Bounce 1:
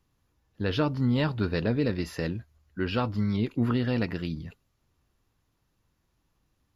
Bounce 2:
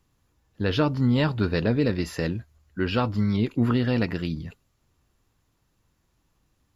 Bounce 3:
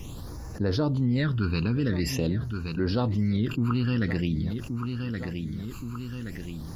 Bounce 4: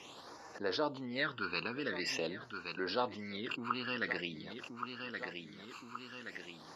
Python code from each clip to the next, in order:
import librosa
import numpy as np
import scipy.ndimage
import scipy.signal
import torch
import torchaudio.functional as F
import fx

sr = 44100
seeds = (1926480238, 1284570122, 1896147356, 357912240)

y1 = fx.peak_eq(x, sr, hz=7400.0, db=4.5, octaves=0.28)
y1 = F.gain(torch.from_numpy(y1), 3.5).numpy()
y2 = fx.phaser_stages(y1, sr, stages=12, low_hz=590.0, high_hz=3200.0, hz=0.47, feedback_pct=25)
y2 = fx.echo_feedback(y2, sr, ms=1123, feedback_pct=20, wet_db=-19.5)
y2 = fx.env_flatten(y2, sr, amount_pct=70)
y2 = F.gain(torch.from_numpy(y2), -5.0).numpy()
y3 = fx.bandpass_edges(y2, sr, low_hz=630.0, high_hz=4500.0)